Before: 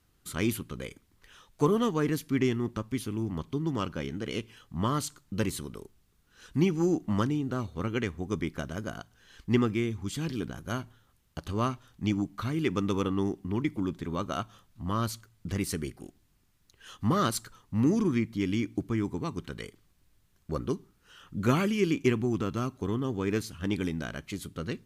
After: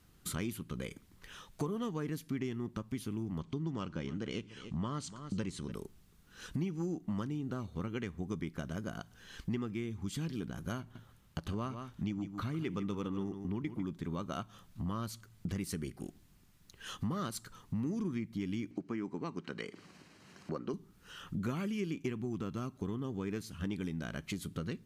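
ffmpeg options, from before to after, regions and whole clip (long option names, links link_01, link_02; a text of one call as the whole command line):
ffmpeg -i in.wav -filter_complex "[0:a]asettb=1/sr,asplit=3[link_01][link_02][link_03];[link_01]atrim=end=3.414[link_04];[link_02]atrim=start=3.41:end=5.72,asetpts=PTS-STARTPTS,afade=type=in:duration=0.004:curve=qsin,afade=type=out:start_time=2.306:duration=0.004:curve=qsin,lowpass=frequency=8200:width=0.5412,lowpass=frequency=8200:width=1.3066,aecho=1:1:293:0.0944,atrim=end_sample=101871[link_05];[link_03]atrim=start=5.716[link_06];[link_04][link_05]acrossfade=duration=0.004:curve1=hsin:curve2=qsin[link_07];[link_07][link_06]acrossfade=duration=0.004:curve1=qsin:curve2=hsin,asettb=1/sr,asplit=3[link_08][link_09][link_10];[link_08]atrim=end=10.804[link_11];[link_09]atrim=start=10.8:end=13.85,asetpts=PTS-STARTPTS,afade=type=in:duration=0.004:curve=qsin,afade=type=out:start_time=3.046:duration=0.004:curve=qsin,bass=frequency=250:gain=0,treble=frequency=4000:gain=-3,aecho=1:1:151:0.266,atrim=end_sample=134505[link_12];[link_10]atrim=start=13.846[link_13];[link_11][link_12]acrossfade=duration=0.004:curve1=hsin:curve2=qsin[link_14];[link_14][link_13]acrossfade=duration=0.004:curve1=qsin:curve2=hsin,asettb=1/sr,asplit=3[link_15][link_16][link_17];[link_15]atrim=end=18.714[link_18];[link_16]atrim=start=18.71:end=20.74,asetpts=PTS-STARTPTS,afade=type=in:duration=0.004:curve=qsin,afade=type=out:start_time=2.026:duration=0.004:curve=qsin,bandreject=frequency=3500:width=6,acompressor=mode=upward:threshold=-37dB:ratio=2.5:attack=3.2:release=140:knee=2.83:detection=peak,highpass=240,lowpass=5100[link_19];[link_17]atrim=start=20.736[link_20];[link_18][link_19]acrossfade=duration=0.004:curve1=hsin:curve2=qsin[link_21];[link_21][link_20]acrossfade=duration=0.004:curve1=qsin:curve2=hsin,equalizer=frequency=180:width_type=o:width=0.66:gain=5.5,acompressor=threshold=-40dB:ratio=4,volume=3.5dB" out.wav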